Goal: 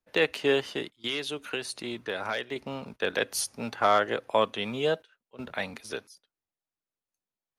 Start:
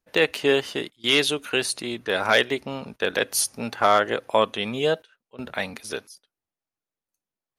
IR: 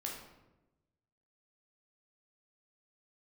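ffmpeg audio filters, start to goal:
-filter_complex "[0:a]acrossover=split=160|1300|3000[link_01][link_02][link_03][link_04];[link_01]acrusher=samples=38:mix=1:aa=0.000001[link_05];[link_05][link_02][link_03][link_04]amix=inputs=4:normalize=0,asettb=1/sr,asplit=3[link_06][link_07][link_08];[link_06]atrim=end=0.964[link_09];[link_07]atrim=start=0.96:end=2.56,asetpts=PTS-STARTPTS,afade=type=in:duration=0.004:curve=qsin,afade=type=out:start_time=1.596:duration=0.004:curve=qsin,acompressor=threshold=-25dB:ratio=4[link_10];[link_08]atrim=start=2.556[link_11];[link_09][link_10]acrossfade=duration=0.004:curve1=hsin:curve2=qsin[link_12];[link_12][link_11]acrossfade=duration=0.004:curve1=qsin:curve2=hsin,highshelf=frequency=8200:gain=-7,volume=-4dB"

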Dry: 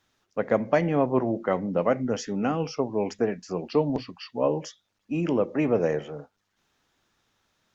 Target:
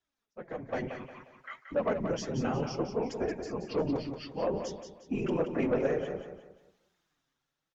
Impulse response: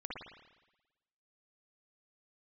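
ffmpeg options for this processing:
-filter_complex "[0:a]asplit=3[link_01][link_02][link_03];[link_01]afade=type=out:start_time=0.87:duration=0.02[link_04];[link_02]highpass=frequency=1500:width=0.5412,highpass=frequency=1500:width=1.3066,afade=type=in:start_time=0.87:duration=0.02,afade=type=out:start_time=1.71:duration=0.02[link_05];[link_03]afade=type=in:start_time=1.71:duration=0.02[link_06];[link_04][link_05][link_06]amix=inputs=3:normalize=0,afftfilt=real='hypot(re,im)*cos(2*PI*random(0))':imag='hypot(re,im)*sin(2*PI*random(1))':win_size=512:overlap=0.75,flanger=delay=2.7:depth=5.5:regen=19:speed=0.61:shape=triangular,asoftclip=type=tanh:threshold=-25dB,dynaudnorm=framelen=150:gausssize=11:maxgain=12dB,aecho=1:1:178|356|534|712:0.398|0.143|0.0516|0.0186,volume=-7dB" -ar 48000 -c:a libmp3lame -b:a 96k

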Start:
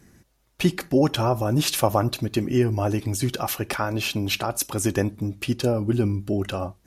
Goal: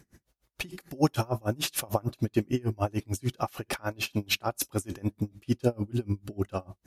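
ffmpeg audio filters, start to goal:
ffmpeg -i in.wav -filter_complex "[0:a]asettb=1/sr,asplit=3[link_01][link_02][link_03];[link_01]atrim=end=0.704[link_04];[link_02]atrim=start=0.7:end=1.28,asetpts=PTS-STARTPTS,afade=type=in:duration=0.004:curve=qsin,afade=type=out:start_time=0.576:duration=0.004:curve=qsin,highshelf=frequency=6700:gain=9.5[link_05];[link_03]atrim=start=1.276[link_06];[link_04][link_05]acrossfade=duration=0.004:curve1=hsin:curve2=qsin[link_07];[link_07][link_06]acrossfade=duration=0.004:curve1=qsin:curve2=hsin,aeval=exprs='val(0)*pow(10,-31*(0.5-0.5*cos(2*PI*6.7*n/s))/20)':channel_layout=same" out.wav

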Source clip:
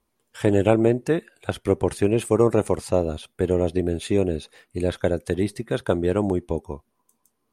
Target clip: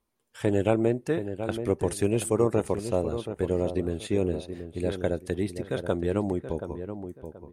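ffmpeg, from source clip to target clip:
ffmpeg -i in.wav -filter_complex "[0:a]asettb=1/sr,asplit=3[link_01][link_02][link_03];[link_01]atrim=end=1.794[link_04];[link_02]atrim=start=1.79:end=2.3,asetpts=PTS-STARTPTS,afade=type=in:duration=0.004:curve=qsin,afade=type=out:start_time=0.506:duration=0.004:curve=qsin,bass=frequency=250:gain=2,treble=frequency=4000:gain=8[link_05];[link_03]atrim=start=2.296[link_06];[link_04][link_05]acrossfade=duration=0.004:curve1=hsin:curve2=qsin[link_07];[link_07][link_06]acrossfade=duration=0.004:curve1=qsin:curve2=hsin,asplit=2[link_08][link_09];[link_09]adelay=728,lowpass=frequency=1500:poles=1,volume=-9dB,asplit=2[link_10][link_11];[link_11]adelay=728,lowpass=frequency=1500:poles=1,volume=0.28,asplit=2[link_12][link_13];[link_13]adelay=728,lowpass=frequency=1500:poles=1,volume=0.28[link_14];[link_08][link_10][link_12][link_14]amix=inputs=4:normalize=0,volume=-5.5dB" out.wav

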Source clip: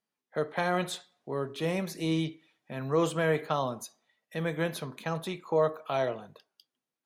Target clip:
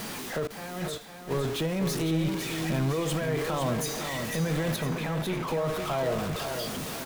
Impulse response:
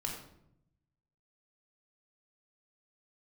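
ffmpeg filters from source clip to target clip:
-filter_complex "[0:a]aeval=exprs='val(0)+0.5*0.0316*sgn(val(0))':channel_layout=same,lowshelf=frequency=200:gain=8,alimiter=limit=-21.5dB:level=0:latency=1:release=26,asettb=1/sr,asplit=3[link_01][link_02][link_03];[link_01]atrim=end=0.474[link_04];[link_02]atrim=start=0.47:end=1.31,asetpts=PTS-STARTPTS,afade=type=in:duration=0.004:curve=qsin,afade=type=out:start_time=0.836:duration=0.004:curve=qsin,agate=range=-33dB:threshold=-24dB:ratio=3:detection=peak[link_05];[link_03]atrim=start=1.306[link_06];[link_04][link_05]acrossfade=duration=0.004:curve1=hsin:curve2=qsin[link_07];[link_07][link_06]acrossfade=duration=0.004:curve1=qsin:curve2=hsin,asettb=1/sr,asplit=3[link_08][link_09][link_10];[link_08]atrim=end=4.764[link_11];[link_09]atrim=start=4.76:end=5.48,asetpts=PTS-STARTPTS,afade=type=in:duration=0.004:curve=qsin,afade=type=out:start_time=0.716:duration=0.004:curve=qsin,bass=frequency=250:gain=-3,treble=frequency=4000:gain=-13[link_12];[link_10]atrim=start=5.476[link_13];[link_11][link_12]acrossfade=duration=0.004:curve1=hsin:curve2=qsin[link_14];[link_14][link_13]acrossfade=duration=0.004:curve1=qsin:curve2=hsin,aecho=1:1:505|1010|1515|2020|2525:0.447|0.183|0.0751|0.0308|0.0126"

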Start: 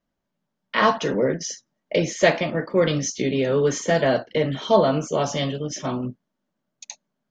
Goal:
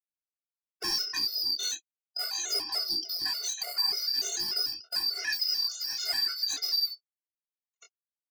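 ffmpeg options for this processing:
ffmpeg -i in.wav -af "afftfilt=real='real(if(lt(b,272),68*(eq(floor(b/68),0)*1+eq(floor(b/68),1)*2+eq(floor(b/68),2)*3+eq(floor(b/68),3)*0)+mod(b,68),b),0)':imag='imag(if(lt(b,272),68*(eq(floor(b/68),0)*1+eq(floor(b/68),1)*2+eq(floor(b/68),2)*3+eq(floor(b/68),3)*0)+mod(b,68),b),0)':win_size=2048:overlap=0.75,agate=range=-56dB:threshold=-33dB:ratio=16:detection=peak,highpass=frequency=600:poles=1,aecho=1:1:2.8:0.93,acompressor=threshold=-24dB:ratio=5,asoftclip=type=hard:threshold=-28dB,atempo=0.88,flanger=delay=19:depth=5:speed=0.42,afftfilt=real='re*gt(sin(2*PI*3.4*pts/sr)*(1-2*mod(floor(b*sr/1024/380),2)),0)':imag='im*gt(sin(2*PI*3.4*pts/sr)*(1-2*mod(floor(b*sr/1024/380),2)),0)':win_size=1024:overlap=0.75,volume=6.5dB" out.wav

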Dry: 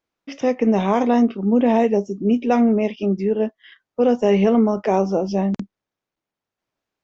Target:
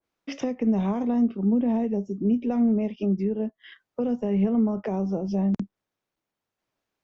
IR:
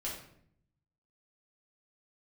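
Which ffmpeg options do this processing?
-filter_complex "[0:a]asettb=1/sr,asplit=3[link_01][link_02][link_03];[link_01]atrim=end=4.194[link_04];[link_02]atrim=start=4.19:end=4.86,asetpts=PTS-STARTPTS,afade=type=in:duration=0.004:curve=qsin,afade=type=out:start_time=0.666:duration=0.004:curve=qsin,bass=frequency=250:gain=-1,treble=frequency=4000:gain=-8[link_05];[link_03]atrim=start=4.856[link_06];[link_04][link_05]acrossfade=duration=0.004:curve1=hsin:curve2=qsin[link_07];[link_07][link_06]acrossfade=duration=0.004:curve1=qsin:curve2=hsin,acrossover=split=220[link_08][link_09];[link_09]acompressor=threshold=-29dB:ratio=10[link_10];[link_08][link_10]amix=inputs=2:normalize=0,adynamicequalizer=threshold=0.00447:dfrequency=1500:dqfactor=0.7:tfrequency=1500:tqfactor=0.7:attack=5:release=100:ratio=0.375:range=2.5:mode=cutabove:tftype=highshelf"

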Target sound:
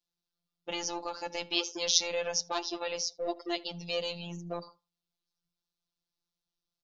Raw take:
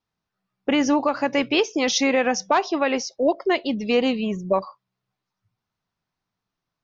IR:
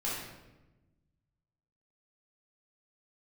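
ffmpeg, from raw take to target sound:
-filter_complex "[0:a]equalizer=frequency=125:width_type=o:width=1:gain=-11,equalizer=frequency=250:width_type=o:width=1:gain=-5,equalizer=frequency=500:width_type=o:width=1:gain=-3,equalizer=frequency=1000:width_type=o:width=1:gain=-6,equalizer=frequency=2000:width_type=o:width=1:gain=-11,equalizer=frequency=4000:width_type=o:width=1:gain=5,acrossover=split=130|440|2100[link_01][link_02][link_03][link_04];[link_02]asoftclip=type=tanh:threshold=-35.5dB[link_05];[link_03]tremolo=f=88:d=0.857[link_06];[link_01][link_05][link_06][link_04]amix=inputs=4:normalize=0,afftfilt=real='hypot(re,im)*cos(PI*b)':imag='0':win_size=1024:overlap=0.75,asplit=2[link_07][link_08];[link_08]adelay=79,lowpass=frequency=1200:poles=1,volume=-18dB,asplit=2[link_09][link_10];[link_10]adelay=79,lowpass=frequency=1200:poles=1,volume=0.23[link_11];[link_07][link_09][link_11]amix=inputs=3:normalize=0"

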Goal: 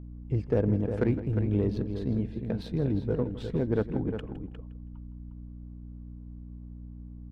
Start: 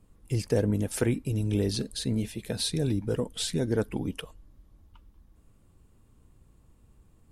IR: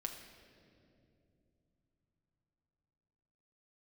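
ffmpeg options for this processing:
-filter_complex "[0:a]adynamicsmooth=sensitivity=1:basefreq=1100,asplit=2[link_01][link_02];[link_02]adelay=355.7,volume=-8dB,highshelf=frequency=4000:gain=-8[link_03];[link_01][link_03]amix=inputs=2:normalize=0,aeval=exprs='val(0)+0.00891*(sin(2*PI*60*n/s)+sin(2*PI*2*60*n/s)/2+sin(2*PI*3*60*n/s)/3+sin(2*PI*4*60*n/s)/4+sin(2*PI*5*60*n/s)/5)':channel_layout=same,asplit=2[link_04][link_05];[link_05]aecho=0:1:162|324:0.168|0.0252[link_06];[link_04][link_06]amix=inputs=2:normalize=0"

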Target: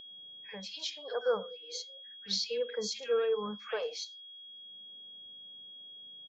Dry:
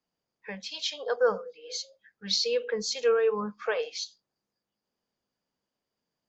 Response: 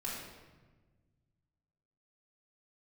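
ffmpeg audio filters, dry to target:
-filter_complex "[0:a]acrossover=split=1800[link_01][link_02];[link_01]adelay=50[link_03];[link_03][link_02]amix=inputs=2:normalize=0,aeval=exprs='val(0)+0.00794*sin(2*PI*3300*n/s)':channel_layout=same,acrossover=split=820[link_04][link_05];[link_04]acompressor=mode=upward:threshold=-48dB:ratio=2.5[link_06];[link_06][link_05]amix=inputs=2:normalize=0,volume=-5.5dB"

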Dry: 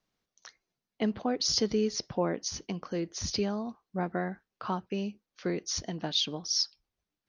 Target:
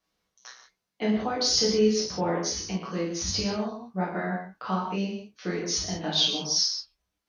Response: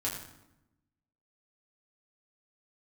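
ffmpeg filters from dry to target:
-filter_complex "[0:a]lowshelf=frequency=430:gain=-7[link_01];[1:a]atrim=start_sample=2205,atrim=end_sample=6174,asetrate=29547,aresample=44100[link_02];[link_01][link_02]afir=irnorm=-1:irlink=0"

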